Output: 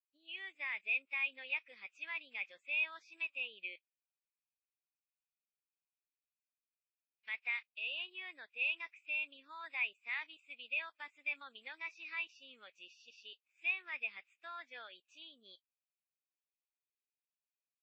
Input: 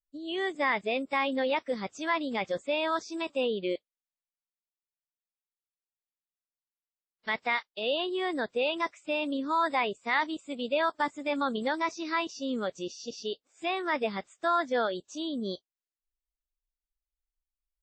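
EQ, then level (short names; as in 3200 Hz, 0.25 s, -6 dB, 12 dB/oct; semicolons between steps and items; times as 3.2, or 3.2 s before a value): band-pass 2500 Hz, Q 13; +5.0 dB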